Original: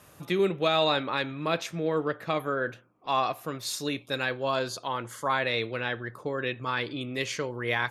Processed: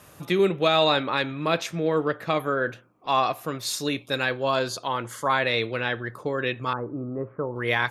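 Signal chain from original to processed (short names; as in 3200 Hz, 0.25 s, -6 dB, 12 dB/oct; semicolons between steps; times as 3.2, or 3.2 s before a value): 6.73–7.56 Chebyshev low-pass 1300 Hz, order 5; gain +4 dB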